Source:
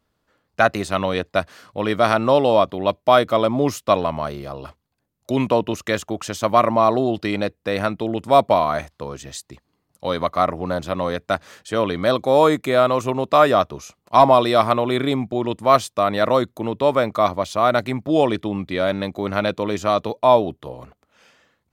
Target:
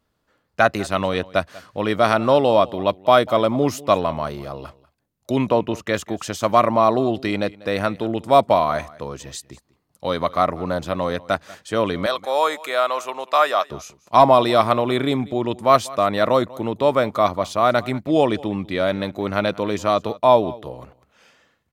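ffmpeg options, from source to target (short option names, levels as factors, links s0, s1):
-filter_complex "[0:a]asettb=1/sr,asplit=3[s0][s1][s2];[s0]atrim=end=5.384[s3];[s1]atrim=start=5.38:end=5.94,asetpts=PTS-STARTPTS,afade=t=in:d=0.004:c=qsin,afade=t=out:st=0.556:d=0.004:c=qsin,highshelf=f=3900:g=-7[s4];[s2]atrim=start=5.936[s5];[s3][s4]acrossfade=d=0.004:c1=hsin:c2=qsin[s6];[s6][s5]acrossfade=d=0.004:c1=qsin:c2=hsin,asettb=1/sr,asplit=3[s7][s8][s9];[s7]atrim=end=12.064[s10];[s8]atrim=start=12.06:end=13.7,asetpts=PTS-STARTPTS,afade=t=in:d=0.004:c=qsin,afade=t=out:st=1.636:d=0.004:c=qsin,highpass=750[s11];[s9]atrim=start=13.696[s12];[s10][s11]acrossfade=d=0.004:c1=hsin:c2=qsin[s13];[s13][s12]acrossfade=d=0.004:c1=qsin:c2=hsin,asplit=2[s14][s15];[s15]aecho=0:1:192:0.0891[s16];[s14][s16]amix=inputs=2:normalize=0"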